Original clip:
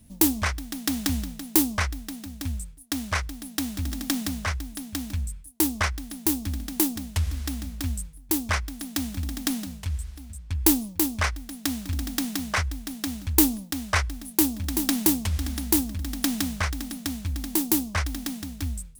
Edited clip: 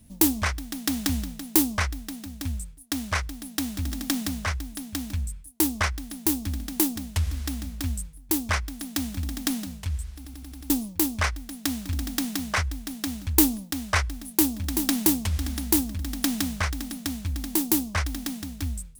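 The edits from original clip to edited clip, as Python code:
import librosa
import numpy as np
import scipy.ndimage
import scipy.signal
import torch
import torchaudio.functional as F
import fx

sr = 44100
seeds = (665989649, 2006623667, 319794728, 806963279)

y = fx.edit(x, sr, fx.stutter_over(start_s=10.16, slice_s=0.09, count=6), tone=tone)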